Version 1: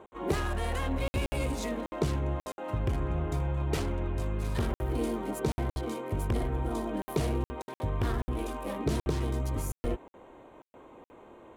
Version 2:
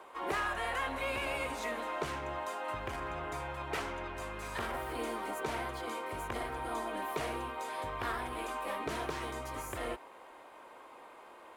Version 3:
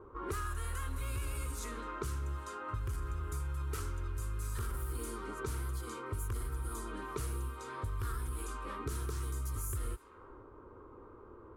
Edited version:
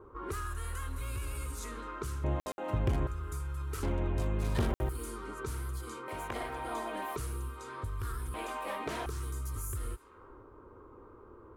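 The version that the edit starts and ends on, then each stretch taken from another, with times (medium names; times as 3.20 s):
3
2.24–3.07 s: from 1
3.83–4.89 s: from 1
6.08–7.16 s: from 2
8.34–9.06 s: from 2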